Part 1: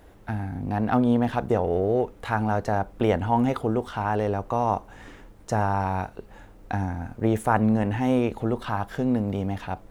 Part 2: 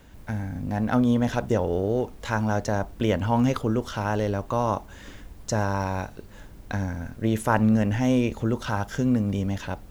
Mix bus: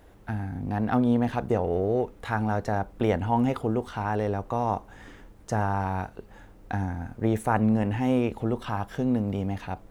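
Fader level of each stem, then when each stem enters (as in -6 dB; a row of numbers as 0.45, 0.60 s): -2.5, -19.0 dB; 0.00, 0.00 s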